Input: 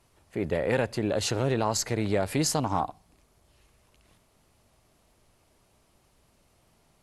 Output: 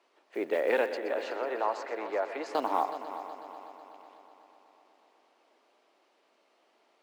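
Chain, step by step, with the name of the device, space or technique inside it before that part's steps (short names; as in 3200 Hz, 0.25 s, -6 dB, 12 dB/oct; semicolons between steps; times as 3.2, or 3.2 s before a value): early digital voice recorder (BPF 250–3800 Hz; block floating point 7-bit); HPF 300 Hz 24 dB/oct; 0.97–2.55 three-band isolator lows -13 dB, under 480 Hz, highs -16 dB, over 2100 Hz; multi-head echo 0.124 s, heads first and third, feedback 65%, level -13 dB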